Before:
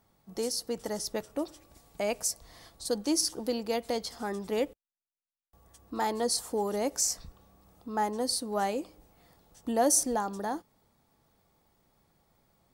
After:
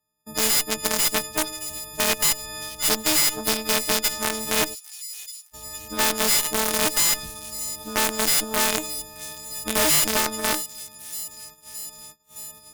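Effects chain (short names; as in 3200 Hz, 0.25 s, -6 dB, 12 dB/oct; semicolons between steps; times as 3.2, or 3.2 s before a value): frequency quantiser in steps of 6 st; in parallel at -8 dB: bit-crush 4-bit; on the sum: hard clip -12 dBFS, distortion -8 dB; added harmonics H 4 -16 dB, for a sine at -12 dBFS; on a send: thin delay 0.618 s, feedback 61%, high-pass 5300 Hz, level -18.5 dB; on the sum: gate -57 dBFS, range -32 dB; spectral compressor 2:1; gain +6 dB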